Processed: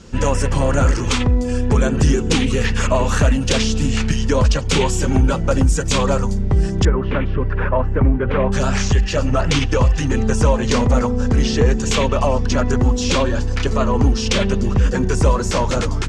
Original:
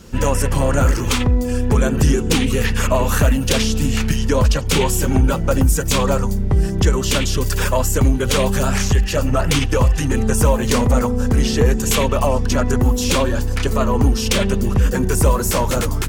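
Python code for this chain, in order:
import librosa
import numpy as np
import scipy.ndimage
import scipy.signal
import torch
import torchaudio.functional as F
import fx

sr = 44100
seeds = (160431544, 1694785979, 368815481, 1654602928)

y = fx.lowpass(x, sr, hz=fx.steps((0.0, 7900.0), (6.85, 2000.0), (8.52, 6800.0)), slope=24)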